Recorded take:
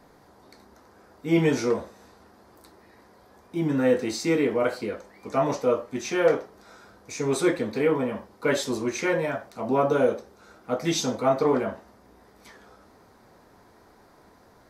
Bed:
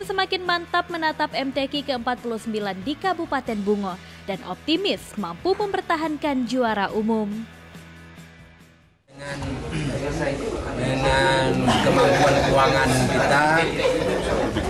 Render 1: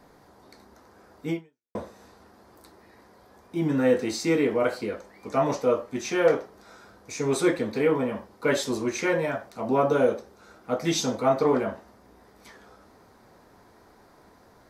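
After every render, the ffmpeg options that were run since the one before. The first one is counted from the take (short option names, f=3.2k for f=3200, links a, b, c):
-filter_complex "[0:a]asplit=2[a][b];[a]atrim=end=1.75,asetpts=PTS-STARTPTS,afade=t=out:st=1.3:d=0.45:c=exp[c];[b]atrim=start=1.75,asetpts=PTS-STARTPTS,afade=t=in:d=0.004:c=hsin[d];[c][d]concat=n=2:v=0:a=1"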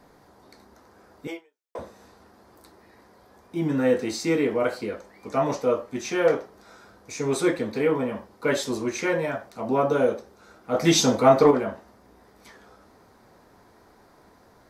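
-filter_complex "[0:a]asettb=1/sr,asplit=3[a][b][c];[a]atrim=end=1.274[d];[b]atrim=start=1.27:end=1.79,asetpts=PTS-STARTPTS,afade=t=in:d=0.004:c=qsin,afade=t=out:st=0.516:d=0.004:c=qsin,highpass=f=410:w=0.5412,highpass=f=410:w=1.3066[e];[c]atrim=start=1.786[f];[d][e]acrossfade=d=0.004:c1=hsin:c2=qsin[g];[g][f]acrossfade=d=0.004:c1=qsin:c2=hsin,asettb=1/sr,asplit=3[h][i][j];[h]atrim=end=10.744[k];[i]atrim=start=10.74:end=11.51,asetpts=PTS-STARTPTS,afade=t=in:d=0.004:c=qsin,afade=t=out:st=0.766:d=0.004:c=qsin,acontrast=74[l];[j]atrim=start=11.506[m];[k][l]acrossfade=d=0.004:c1=hsin:c2=qsin[n];[n][m]acrossfade=d=0.004:c1=qsin:c2=hsin"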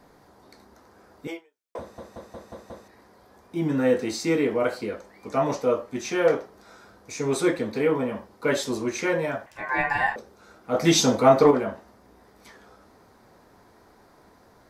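-filter_complex "[0:a]asettb=1/sr,asplit=3[a][b][c];[a]atrim=end=9.464[d];[b]atrim=start=9.46:end=10.16,asetpts=PTS-STARTPTS,afade=t=in:d=0.004:c=qsin,afade=t=out:st=0.696:d=0.004:c=qsin,aeval=exprs='val(0)*sin(2*PI*1300*n/s)':c=same[e];[c]atrim=start=10.156[f];[d][e]acrossfade=d=0.004:c1=hsin:c2=qsin[g];[g][f]acrossfade=d=0.004:c1=qsin:c2=hsin,asplit=7[h][i][j][k][l][m][n];[h]atrim=end=1.982[o];[i]atrim=start=1.798:end=1.982[p];[j]atrim=start=1.798:end=1.982[q];[k]atrim=start=1.798:end=1.982[r];[l]atrim=start=1.798:end=1.982[s];[m]atrim=start=1.798:end=1.982[t];[n]atrim=start=2.878[u];[o][p]acrossfade=d=0.004:c1=hsin:c2=hsin[v];[v][q]acrossfade=d=0.004:c1=hsin:c2=hsin[w];[w][r]acrossfade=d=0.004:c1=hsin:c2=hsin[x];[x][s]acrossfade=d=0.004:c1=hsin:c2=hsin[y];[y][t]acrossfade=d=0.004:c1=hsin:c2=hsin[z];[z][u]acrossfade=d=0.004:c1=hsin:c2=hsin"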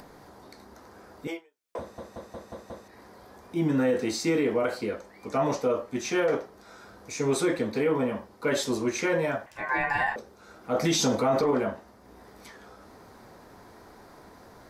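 -af "acompressor=mode=upward:threshold=-43dB:ratio=2.5,alimiter=limit=-16.5dB:level=0:latency=1:release=36"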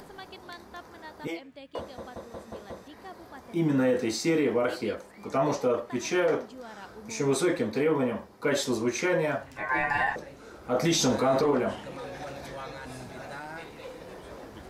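-filter_complex "[1:a]volume=-22.5dB[a];[0:a][a]amix=inputs=2:normalize=0"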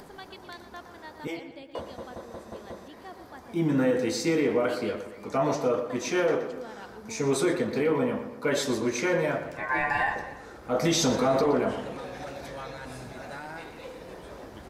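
-filter_complex "[0:a]asplit=2[a][b];[b]adelay=119,lowpass=f=3.9k:p=1,volume=-10dB,asplit=2[c][d];[d]adelay=119,lowpass=f=3.9k:p=1,volume=0.52,asplit=2[e][f];[f]adelay=119,lowpass=f=3.9k:p=1,volume=0.52,asplit=2[g][h];[h]adelay=119,lowpass=f=3.9k:p=1,volume=0.52,asplit=2[i][j];[j]adelay=119,lowpass=f=3.9k:p=1,volume=0.52,asplit=2[k][l];[l]adelay=119,lowpass=f=3.9k:p=1,volume=0.52[m];[a][c][e][g][i][k][m]amix=inputs=7:normalize=0"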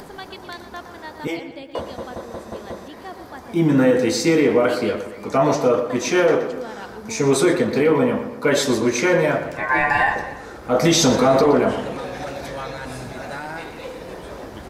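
-af "volume=8.5dB"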